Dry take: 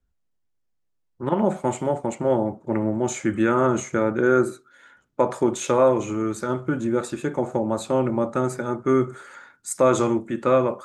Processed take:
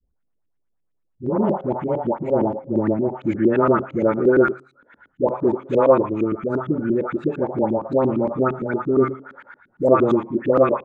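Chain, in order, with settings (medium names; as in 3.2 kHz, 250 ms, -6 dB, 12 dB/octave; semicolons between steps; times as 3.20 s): treble shelf 2.6 kHz -8 dB; de-hum 133.2 Hz, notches 34; phase dispersion highs, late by 145 ms, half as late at 960 Hz; LFO low-pass saw up 8.7 Hz 240–3200 Hz; trim +1 dB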